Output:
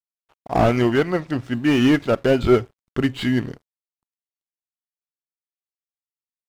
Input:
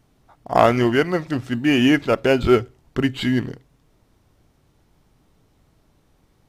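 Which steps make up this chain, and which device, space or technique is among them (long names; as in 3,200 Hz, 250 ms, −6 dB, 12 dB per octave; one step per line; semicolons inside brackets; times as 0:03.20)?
0:00.93–0:01.54: high-shelf EQ 6,600 Hz −7.5 dB
early transistor amplifier (dead-zone distortion −48 dBFS; slew-rate limiting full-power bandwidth 170 Hz)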